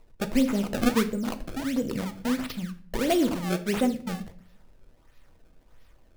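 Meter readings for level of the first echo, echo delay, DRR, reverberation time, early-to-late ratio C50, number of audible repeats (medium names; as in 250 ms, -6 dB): no echo, no echo, 8.0 dB, 0.50 s, 15.0 dB, no echo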